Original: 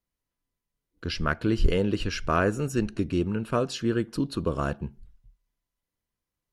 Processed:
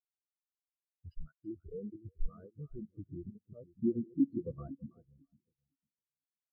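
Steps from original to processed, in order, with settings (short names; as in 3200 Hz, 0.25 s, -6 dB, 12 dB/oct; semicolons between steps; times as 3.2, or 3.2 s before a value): 1.28–2.2 HPF 75 Hz 24 dB/oct; 2.89–3.3 low shelf 270 Hz +9 dB; compressor 5:1, threshold -36 dBFS, peak gain reduction 18 dB; speakerphone echo 0.14 s, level -9 dB; level quantiser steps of 20 dB; 3.81–4.68 power-law curve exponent 0.5; soft clip -31.5 dBFS, distortion -21 dB; split-band echo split 490 Hz, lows 0.505 s, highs 0.328 s, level -5 dB; spectral expander 4:1; gain +9.5 dB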